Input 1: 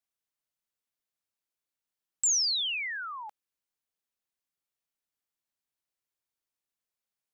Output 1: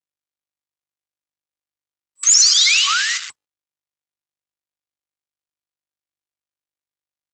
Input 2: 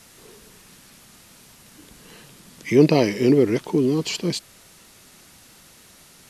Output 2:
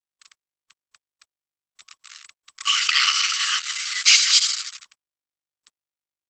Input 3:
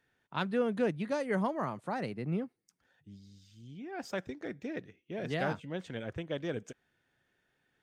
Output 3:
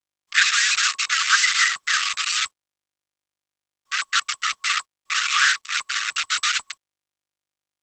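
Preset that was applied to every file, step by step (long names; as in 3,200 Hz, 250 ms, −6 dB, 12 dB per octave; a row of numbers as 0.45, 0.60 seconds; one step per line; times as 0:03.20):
frequency inversion band by band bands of 1,000 Hz
delay with a high-pass on its return 79 ms, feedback 73%, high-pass 3,800 Hz, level −5 dB
bit reduction 6 bits
brick-wall band-pass 1,100–7,800 Hz
Opus 10 kbit/s 48,000 Hz
normalise the peak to −1.5 dBFS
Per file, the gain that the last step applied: +14.5, +13.5, +21.0 decibels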